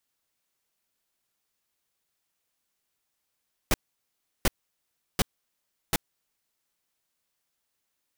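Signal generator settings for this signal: noise bursts pink, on 0.03 s, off 0.71 s, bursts 4, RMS -21.5 dBFS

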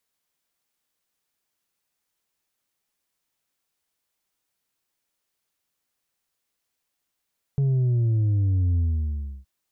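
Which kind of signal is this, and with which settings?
sub drop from 140 Hz, over 1.87 s, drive 3.5 dB, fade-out 0.68 s, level -19 dB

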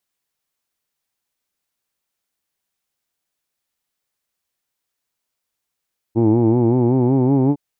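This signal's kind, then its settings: formant vowel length 1.41 s, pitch 110 Hz, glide +4 st, F1 320 Hz, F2 860 Hz, F3 2.3 kHz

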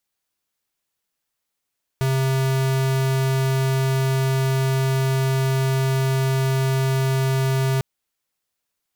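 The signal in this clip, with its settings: tone square 133 Hz -20 dBFS 5.80 s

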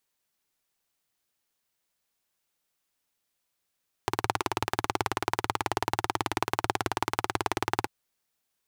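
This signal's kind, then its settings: single-cylinder engine model, steady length 3.79 s, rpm 2200, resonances 110/360/820 Hz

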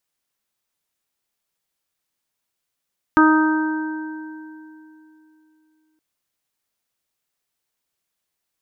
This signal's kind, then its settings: additive tone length 2.82 s, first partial 312 Hz, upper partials -17/-6/-3.5/-6 dB, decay 3.14 s, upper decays 1.82/2.52/1.22/2.63 s, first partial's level -11 dB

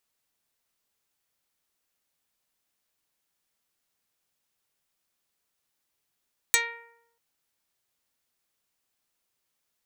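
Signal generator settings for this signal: plucked string A#4, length 0.64 s, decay 0.86 s, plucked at 0.1, dark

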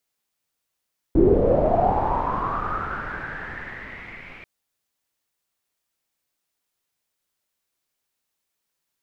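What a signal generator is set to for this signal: swept filtered noise pink, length 3.29 s lowpass, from 320 Hz, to 2.3 kHz, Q 8.2, linear, gain ramp -29 dB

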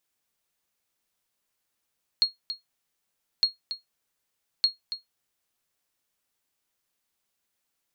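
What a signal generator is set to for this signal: sonar ping 4.29 kHz, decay 0.15 s, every 1.21 s, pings 3, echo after 0.28 s, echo -11.5 dB -12.5 dBFS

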